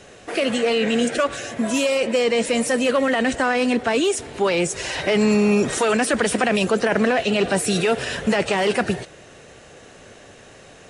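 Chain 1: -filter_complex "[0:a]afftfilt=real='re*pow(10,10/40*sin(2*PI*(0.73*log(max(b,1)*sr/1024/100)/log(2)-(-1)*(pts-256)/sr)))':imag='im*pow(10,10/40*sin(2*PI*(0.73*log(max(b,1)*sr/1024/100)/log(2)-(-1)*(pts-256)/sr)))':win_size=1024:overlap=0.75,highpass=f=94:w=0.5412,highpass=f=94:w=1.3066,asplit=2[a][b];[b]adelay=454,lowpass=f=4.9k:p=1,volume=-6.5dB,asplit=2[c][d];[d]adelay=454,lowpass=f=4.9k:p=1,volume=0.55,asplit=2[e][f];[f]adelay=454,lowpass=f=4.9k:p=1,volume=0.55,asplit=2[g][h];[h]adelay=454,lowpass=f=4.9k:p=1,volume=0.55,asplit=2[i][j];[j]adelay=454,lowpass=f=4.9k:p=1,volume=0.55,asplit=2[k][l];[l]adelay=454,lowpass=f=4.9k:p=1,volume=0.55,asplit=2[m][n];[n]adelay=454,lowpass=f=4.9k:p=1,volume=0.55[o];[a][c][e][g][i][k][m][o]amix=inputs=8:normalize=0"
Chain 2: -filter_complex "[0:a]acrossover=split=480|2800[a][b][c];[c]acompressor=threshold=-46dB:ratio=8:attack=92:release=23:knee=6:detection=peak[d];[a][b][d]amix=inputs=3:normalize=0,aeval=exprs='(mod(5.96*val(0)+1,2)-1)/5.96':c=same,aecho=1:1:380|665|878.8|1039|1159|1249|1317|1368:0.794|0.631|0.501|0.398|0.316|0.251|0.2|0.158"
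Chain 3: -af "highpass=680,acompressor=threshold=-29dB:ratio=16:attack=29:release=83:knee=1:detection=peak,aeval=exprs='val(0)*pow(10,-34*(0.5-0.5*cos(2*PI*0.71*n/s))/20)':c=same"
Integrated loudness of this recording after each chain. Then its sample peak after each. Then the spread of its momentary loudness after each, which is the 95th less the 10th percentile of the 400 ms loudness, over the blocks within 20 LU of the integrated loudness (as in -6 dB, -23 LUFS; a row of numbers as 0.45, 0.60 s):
-18.0, -17.0, -34.0 LUFS; -4.0, -5.5, -14.5 dBFS; 11, 6, 20 LU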